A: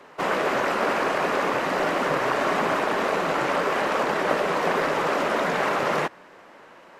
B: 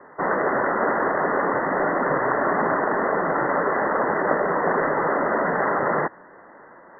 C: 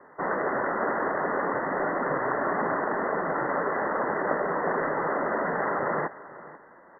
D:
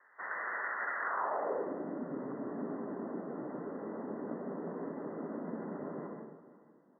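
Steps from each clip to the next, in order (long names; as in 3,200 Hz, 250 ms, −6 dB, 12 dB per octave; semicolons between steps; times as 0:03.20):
Chebyshev low-pass filter 2,000 Hz, order 10; level +2.5 dB
single-tap delay 490 ms −17.5 dB; level −5.5 dB
dense smooth reverb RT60 0.77 s, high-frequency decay 0.8×, pre-delay 110 ms, DRR 1 dB; band-pass filter sweep 1,800 Hz → 240 Hz, 0:00.99–0:01.85; level −4.5 dB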